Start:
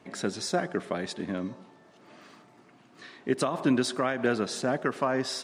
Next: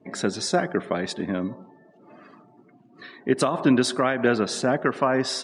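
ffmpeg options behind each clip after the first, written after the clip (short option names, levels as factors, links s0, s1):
-af "afftdn=nr=23:nf=-52,volume=1.88"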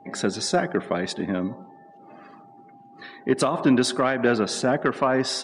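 -af "acontrast=67,aeval=exprs='val(0)+0.00708*sin(2*PI*800*n/s)':c=same,volume=0.531"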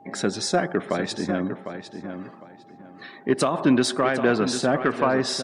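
-filter_complex "[0:a]asplit=2[s0][s1];[s1]adelay=753,lowpass=f=4300:p=1,volume=0.355,asplit=2[s2][s3];[s3]adelay=753,lowpass=f=4300:p=1,volume=0.24,asplit=2[s4][s5];[s5]adelay=753,lowpass=f=4300:p=1,volume=0.24[s6];[s0][s2][s4][s6]amix=inputs=4:normalize=0"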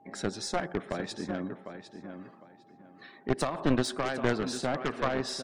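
-af "aeval=exprs='0.398*(cos(1*acos(clip(val(0)/0.398,-1,1)))-cos(1*PI/2))+0.2*(cos(4*acos(clip(val(0)/0.398,-1,1)))-cos(4*PI/2))+0.1*(cos(6*acos(clip(val(0)/0.398,-1,1)))-cos(6*PI/2))':c=same,volume=0.355"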